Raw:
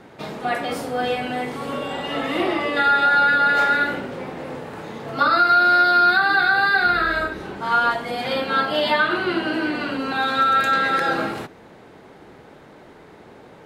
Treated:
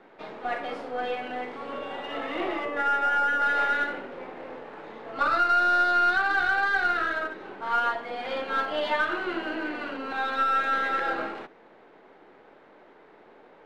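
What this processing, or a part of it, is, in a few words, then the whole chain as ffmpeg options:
crystal radio: -filter_complex "[0:a]asettb=1/sr,asplit=3[link_01][link_02][link_03];[link_01]atrim=end=2.654[link_04];[link_02]atrim=start=2.65:end=3.42,asetpts=PTS-STARTPTS,afade=type=in:duration=0.004:curve=qsin,afade=type=out:start_time=0.766:duration=0.004:curve=qsin,lowpass=1900[link_05];[link_03]atrim=start=3.416[link_06];[link_04][link_05]acrossfade=duration=0.004:curve1=hsin:curve2=qsin[link_07];[link_07][link_06]acrossfade=duration=0.004:curve1=qsin:curve2=hsin,highpass=320,lowpass=2900,aeval=exprs='if(lt(val(0),0),0.708*val(0),val(0))':channel_layout=same,volume=-5dB"

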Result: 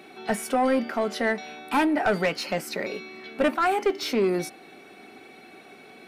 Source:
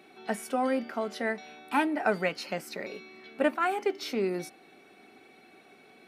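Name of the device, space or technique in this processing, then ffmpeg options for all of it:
saturation between pre-emphasis and de-emphasis: -af "highshelf=frequency=2700:gain=10,asoftclip=type=tanh:threshold=-23dB,highshelf=frequency=2700:gain=-10,volume=8dB"

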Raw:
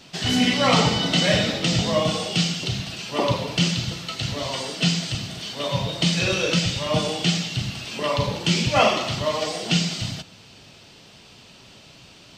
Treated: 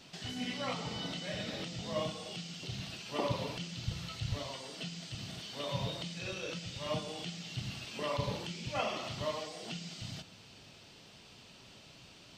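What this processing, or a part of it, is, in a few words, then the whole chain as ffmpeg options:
de-esser from a sidechain: -filter_complex "[0:a]asplit=3[link_01][link_02][link_03];[link_01]afade=type=out:start_time=3.86:duration=0.02[link_04];[link_02]asubboost=boost=5.5:cutoff=120,afade=type=in:start_time=3.86:duration=0.02,afade=type=out:start_time=4.38:duration=0.02[link_05];[link_03]afade=type=in:start_time=4.38:duration=0.02[link_06];[link_04][link_05][link_06]amix=inputs=3:normalize=0,asplit=2[link_07][link_08];[link_08]highpass=frequency=5900:width=0.5412,highpass=frequency=5900:width=1.3066,apad=whole_len=545955[link_09];[link_07][link_09]sidechaincompress=threshold=-45dB:ratio=12:attack=2.5:release=39,volume=-8dB"

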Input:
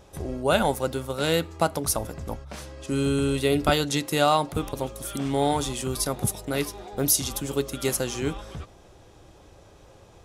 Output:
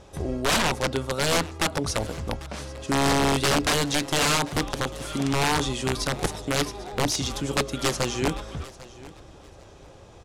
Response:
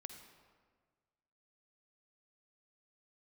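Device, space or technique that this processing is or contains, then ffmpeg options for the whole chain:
overflowing digital effects unit: -filter_complex "[0:a]acrossover=split=6600[link_01][link_02];[link_02]acompressor=threshold=-42dB:ratio=4:attack=1:release=60[link_03];[link_01][link_03]amix=inputs=2:normalize=0,aeval=exprs='(mod(8.41*val(0)+1,2)-1)/8.41':channel_layout=same,lowpass=9100,asettb=1/sr,asplit=3[link_04][link_05][link_06];[link_04]atrim=end=0.604[link_07];[link_05]atrim=start=0.6:end=1.11,asetpts=PTS-STARTPTS,afade=type=in:duration=0.004:curve=qsin,afade=type=out:start_time=0.506:duration=0.004:curve=qsin,highshelf=frequency=7800:gain=-5.5[link_08];[link_06]atrim=start=1.106[link_09];[link_07][link_08]acrossfade=duration=0.004:curve1=hsin:curve2=qsin[link_10];[link_10][link_09]acrossfade=duration=0.004:curve1=qsin:curve2=hsin,aecho=1:1:795|1590:0.106|0.0254,volume=3dB"

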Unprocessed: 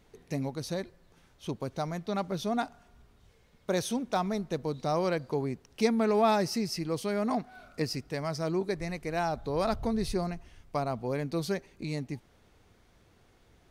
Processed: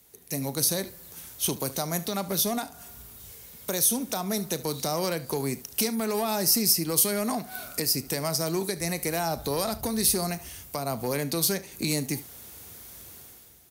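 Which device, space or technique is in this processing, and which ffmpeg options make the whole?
FM broadcast chain: -filter_complex "[0:a]asettb=1/sr,asplit=3[link_01][link_02][link_03];[link_01]atrim=end=11.084[link_04];[link_02]atrim=start=11.08:end=11.72,asetpts=PTS-STARTPTS,afade=type=in:duration=0.004:curve=qsin,afade=type=out:start_time=0.636:duration=0.004:curve=qsin,highshelf=frequency=10000:gain=-7.5[link_05];[link_03]atrim=start=11.716[link_06];[link_04][link_05]acrossfade=duration=0.004:curve1=hsin:curve2=qsin[link_07];[link_07][link_06]acrossfade=duration=0.004:curve1=qsin:curve2=hsin,highpass=frequency=51:width=0.5412,highpass=frequency=51:width=1.3066,dynaudnorm=framelen=100:gausssize=11:maxgain=13dB,acrossover=split=170|1000[link_08][link_09][link_10];[link_08]acompressor=threshold=-34dB:ratio=4[link_11];[link_09]acompressor=threshold=-22dB:ratio=4[link_12];[link_10]acompressor=threshold=-31dB:ratio=4[link_13];[link_11][link_12][link_13]amix=inputs=3:normalize=0,aemphasis=mode=production:type=50fm,alimiter=limit=-15.5dB:level=0:latency=1:release=284,asoftclip=type=hard:threshold=-18dB,lowpass=frequency=15000:width=0.5412,lowpass=frequency=15000:width=1.3066,aemphasis=mode=production:type=50fm,aecho=1:1:36|73:0.15|0.126,volume=-3dB"

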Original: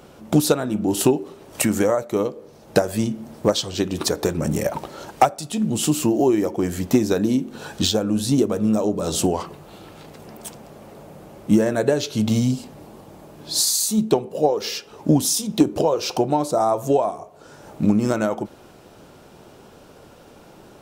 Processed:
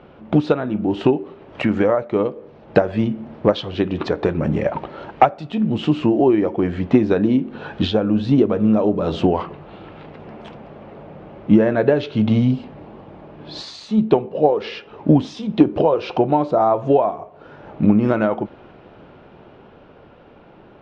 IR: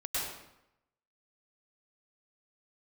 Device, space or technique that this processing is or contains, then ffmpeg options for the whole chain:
action camera in a waterproof case: -af "lowpass=frequency=3000:width=0.5412,lowpass=frequency=3000:width=1.3066,dynaudnorm=framelen=110:gausssize=31:maxgain=4dB,volume=1dB" -ar 22050 -c:a aac -b:a 96k

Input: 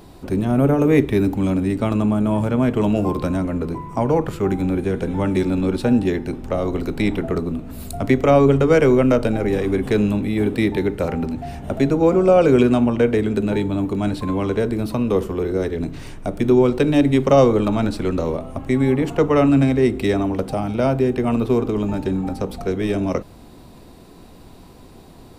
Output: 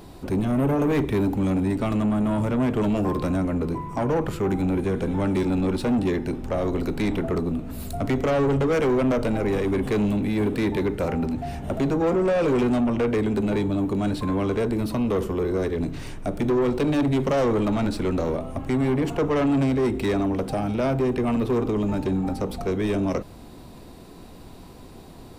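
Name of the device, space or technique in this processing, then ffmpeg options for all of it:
saturation between pre-emphasis and de-emphasis: -af "highshelf=frequency=2100:gain=11.5,asoftclip=type=tanh:threshold=-17.5dB,highshelf=frequency=2100:gain=-11.5"

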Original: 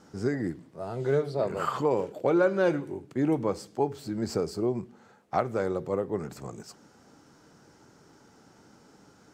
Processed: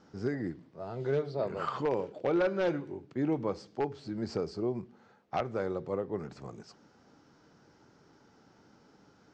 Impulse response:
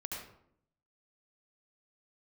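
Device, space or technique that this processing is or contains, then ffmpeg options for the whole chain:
synthesiser wavefolder: -af "aeval=exprs='0.15*(abs(mod(val(0)/0.15+3,4)-2)-1)':channel_layout=same,lowpass=frequency=5700:width=0.5412,lowpass=frequency=5700:width=1.3066,volume=-4.5dB"

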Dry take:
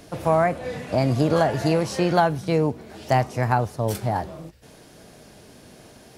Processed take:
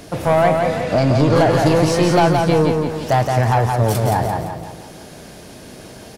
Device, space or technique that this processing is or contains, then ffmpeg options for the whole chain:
saturation between pre-emphasis and de-emphasis: -filter_complex "[0:a]asettb=1/sr,asplit=3[link_01][link_02][link_03];[link_01]atrim=end=0.814[link_04];[link_02]atrim=start=0.81:end=1.35,asetpts=PTS-STARTPTS,afade=type=in:duration=0.004:curve=qsin,afade=type=out:start_time=0.536:duration=0.004:curve=qsin,lowpass=7200[link_05];[link_03]atrim=start=1.346[link_06];[link_04][link_05]acrossfade=duration=0.004:curve1=hsin:curve2=qsin[link_07];[link_07][link_06]acrossfade=duration=0.004:curve1=qsin:curve2=hsin,highshelf=frequency=2900:gain=8,asoftclip=type=tanh:threshold=-16.5dB,highshelf=frequency=2900:gain=-8,aecho=1:1:171|342|513|684|855|1026:0.631|0.284|0.128|0.0575|0.0259|0.0116,volume=8dB"

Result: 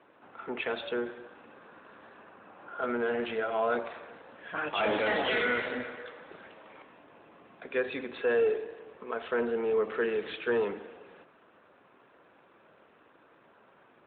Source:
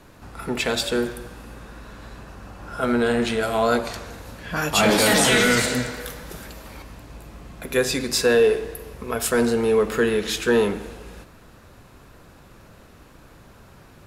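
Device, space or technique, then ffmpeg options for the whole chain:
telephone: -af "highpass=350,lowpass=3200,asoftclip=type=tanh:threshold=-12.5dB,volume=-6dB" -ar 8000 -c:a libopencore_amrnb -b:a 12200

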